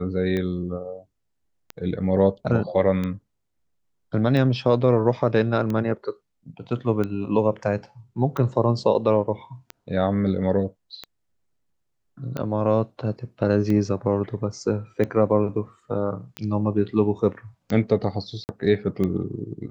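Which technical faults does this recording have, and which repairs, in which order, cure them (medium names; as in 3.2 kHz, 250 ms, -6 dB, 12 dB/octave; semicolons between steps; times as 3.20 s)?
tick 45 rpm -16 dBFS
18.44–18.49 s: dropout 49 ms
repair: de-click; interpolate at 18.44 s, 49 ms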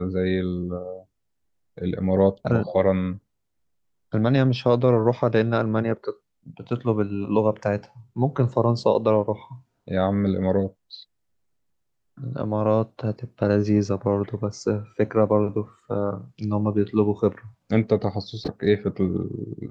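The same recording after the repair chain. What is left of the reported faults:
nothing left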